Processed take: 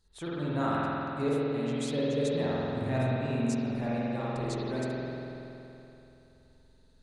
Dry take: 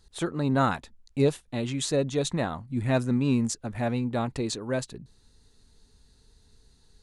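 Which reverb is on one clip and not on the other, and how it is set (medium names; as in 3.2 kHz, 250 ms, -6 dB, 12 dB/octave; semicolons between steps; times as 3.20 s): spring tank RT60 3.1 s, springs 47 ms, chirp 40 ms, DRR -7.5 dB; trim -11 dB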